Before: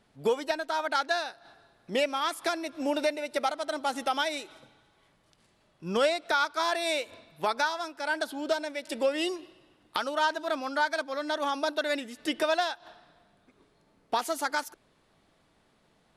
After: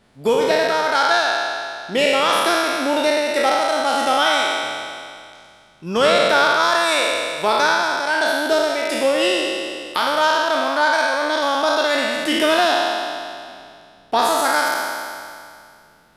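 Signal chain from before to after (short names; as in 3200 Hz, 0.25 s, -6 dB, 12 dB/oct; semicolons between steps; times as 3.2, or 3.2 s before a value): spectral trails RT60 2.29 s; gain +6.5 dB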